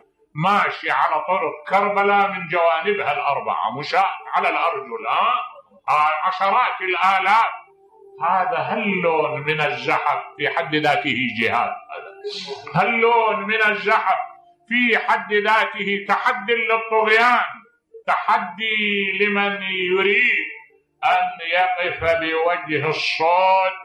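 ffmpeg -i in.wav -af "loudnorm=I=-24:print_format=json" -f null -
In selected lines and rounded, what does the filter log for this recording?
"input_i" : "-19.0",
"input_tp" : "-4.3",
"input_lra" : "1.9",
"input_thresh" : "-29.4",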